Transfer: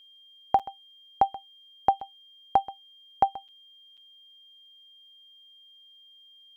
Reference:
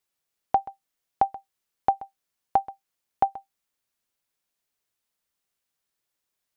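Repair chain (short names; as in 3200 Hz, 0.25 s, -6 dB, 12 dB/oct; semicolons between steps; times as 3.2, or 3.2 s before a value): notch 3200 Hz, Q 30; interpolate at 0.59/2/3.48/3.97, 6.4 ms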